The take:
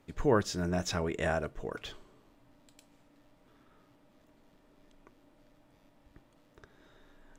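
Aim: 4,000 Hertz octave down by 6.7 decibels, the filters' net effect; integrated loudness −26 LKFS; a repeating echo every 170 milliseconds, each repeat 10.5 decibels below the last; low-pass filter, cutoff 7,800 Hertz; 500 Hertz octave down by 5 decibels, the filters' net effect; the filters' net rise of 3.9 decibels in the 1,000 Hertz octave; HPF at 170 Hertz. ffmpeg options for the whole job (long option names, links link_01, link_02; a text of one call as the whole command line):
ffmpeg -i in.wav -af "highpass=170,lowpass=7800,equalizer=frequency=500:width_type=o:gain=-8.5,equalizer=frequency=1000:width_type=o:gain=8,equalizer=frequency=4000:width_type=o:gain=-9,aecho=1:1:170|340|510:0.299|0.0896|0.0269,volume=8dB" out.wav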